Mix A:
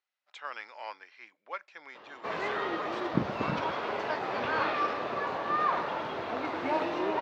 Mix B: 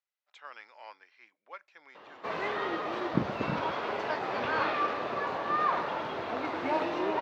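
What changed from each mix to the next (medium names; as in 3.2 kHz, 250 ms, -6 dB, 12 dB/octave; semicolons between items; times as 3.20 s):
speech -7.0 dB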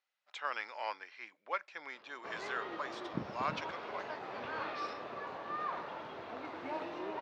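speech +9.0 dB; background -10.5 dB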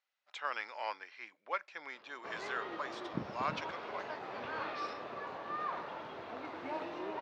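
no change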